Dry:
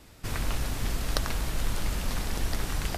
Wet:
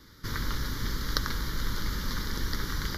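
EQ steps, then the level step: bass shelf 150 Hz -6.5 dB; static phaser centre 2.6 kHz, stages 6; +3.5 dB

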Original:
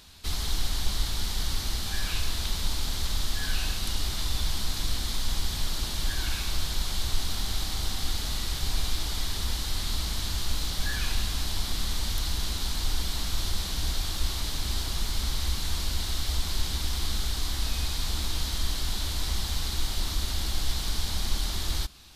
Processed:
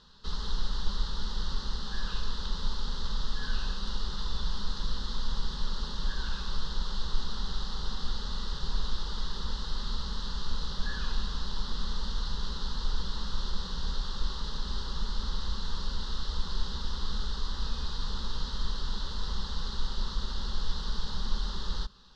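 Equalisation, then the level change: low-pass 4.5 kHz 24 dB/octave; static phaser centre 460 Hz, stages 8; 0.0 dB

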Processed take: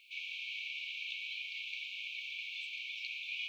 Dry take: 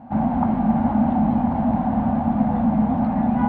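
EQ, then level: brick-wall FIR high-pass 2.2 kHz; +17.0 dB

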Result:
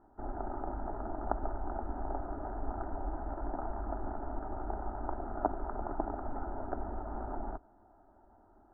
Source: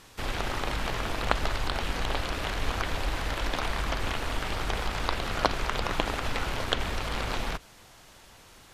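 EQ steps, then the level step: elliptic low-pass 1.2 kHz, stop band 50 dB; bass shelf 130 Hz -4.5 dB; static phaser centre 740 Hz, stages 8; -1.0 dB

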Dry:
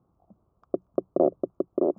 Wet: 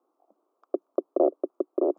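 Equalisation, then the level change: steep high-pass 290 Hz 48 dB/octave; 0.0 dB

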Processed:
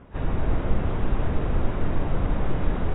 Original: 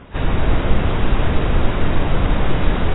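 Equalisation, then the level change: distance through air 120 m; treble shelf 2.3 kHz -10.5 dB; -7.0 dB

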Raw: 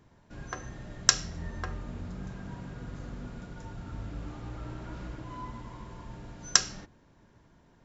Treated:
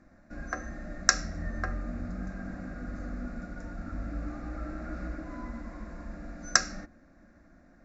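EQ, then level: distance through air 94 m; static phaser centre 630 Hz, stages 8; +6.5 dB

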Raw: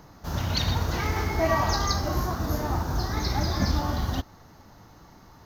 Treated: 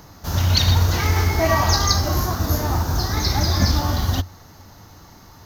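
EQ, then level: peaking EQ 90 Hz +9 dB 0.29 oct; treble shelf 3.3 kHz +8.5 dB; +4.0 dB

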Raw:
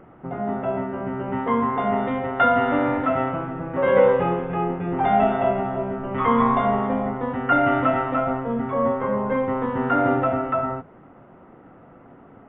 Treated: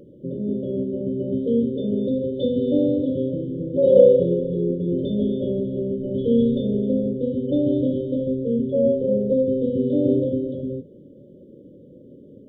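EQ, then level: brick-wall FIR band-stop 600–3000 Hz; bass shelf 73 Hz -11 dB; band-stop 3.2 kHz, Q 11; +4.5 dB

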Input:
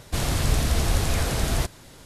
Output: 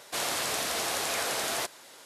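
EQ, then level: high-pass 530 Hz 12 dB/octave; 0.0 dB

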